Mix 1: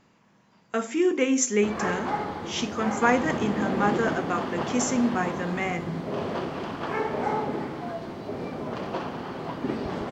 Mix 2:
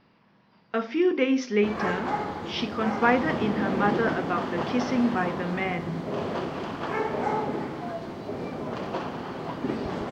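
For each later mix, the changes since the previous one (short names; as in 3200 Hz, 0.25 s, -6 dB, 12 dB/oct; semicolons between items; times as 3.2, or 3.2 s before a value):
speech: add steep low-pass 5300 Hz 72 dB/oct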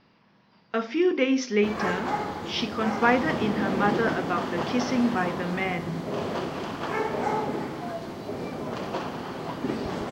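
master: add high shelf 5900 Hz +10.5 dB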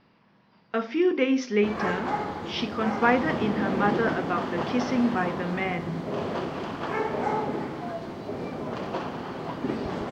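master: add high shelf 5900 Hz -10.5 dB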